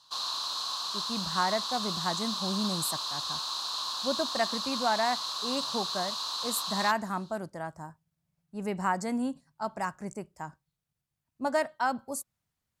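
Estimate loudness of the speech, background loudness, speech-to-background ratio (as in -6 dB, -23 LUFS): -33.0 LUFS, -32.0 LUFS, -1.0 dB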